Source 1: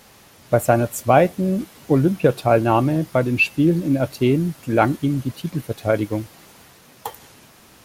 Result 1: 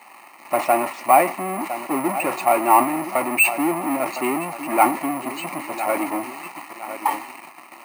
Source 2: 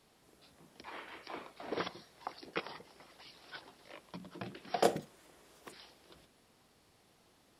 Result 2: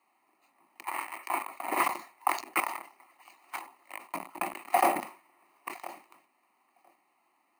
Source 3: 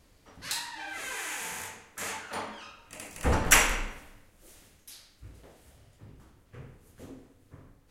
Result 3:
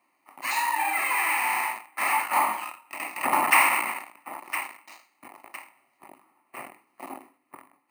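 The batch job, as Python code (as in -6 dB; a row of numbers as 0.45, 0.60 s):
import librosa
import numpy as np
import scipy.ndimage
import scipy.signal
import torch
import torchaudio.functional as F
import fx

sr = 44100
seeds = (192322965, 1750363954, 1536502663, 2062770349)

p1 = fx.peak_eq(x, sr, hz=620.0, db=-7.5, octaves=0.46)
p2 = fx.echo_feedback(p1, sr, ms=1010, feedback_pct=37, wet_db=-22)
p3 = fx.fuzz(p2, sr, gain_db=39.0, gate_db=-46.0)
p4 = p2 + (p3 * librosa.db_to_amplitude(-7.0))
p5 = fx.air_absorb(p4, sr, metres=450.0)
p6 = fx.fixed_phaser(p5, sr, hz=2300.0, stages=8)
p7 = np.repeat(p6[::4], 4)[:len(p6)]
p8 = scipy.signal.sosfilt(scipy.signal.butter(4, 370.0, 'highpass', fs=sr, output='sos'), p7)
p9 = fx.sustainer(p8, sr, db_per_s=140.0)
y = p9 * librosa.db_to_amplitude(6.5)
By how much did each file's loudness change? -1.5, +8.0, +4.5 LU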